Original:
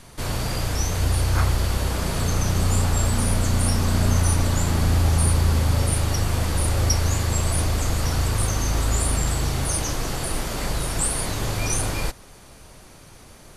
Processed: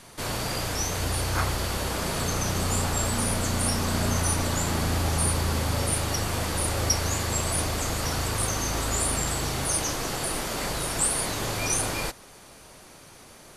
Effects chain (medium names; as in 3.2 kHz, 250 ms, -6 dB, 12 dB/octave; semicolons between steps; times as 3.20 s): bass shelf 130 Hz -12 dB